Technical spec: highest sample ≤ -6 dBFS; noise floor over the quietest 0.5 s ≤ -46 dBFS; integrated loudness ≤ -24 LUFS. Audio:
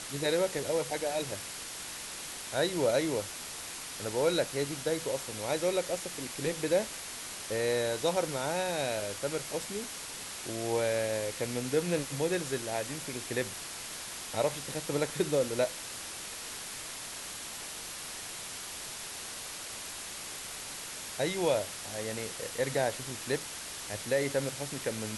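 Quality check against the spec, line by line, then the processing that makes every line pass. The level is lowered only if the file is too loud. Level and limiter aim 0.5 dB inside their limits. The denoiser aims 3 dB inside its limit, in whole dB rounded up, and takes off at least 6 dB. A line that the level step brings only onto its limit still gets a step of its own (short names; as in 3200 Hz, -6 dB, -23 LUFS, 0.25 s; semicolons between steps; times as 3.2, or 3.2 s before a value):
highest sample -15.5 dBFS: OK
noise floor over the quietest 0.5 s -42 dBFS: fail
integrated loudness -33.5 LUFS: OK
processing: denoiser 7 dB, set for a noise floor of -42 dBFS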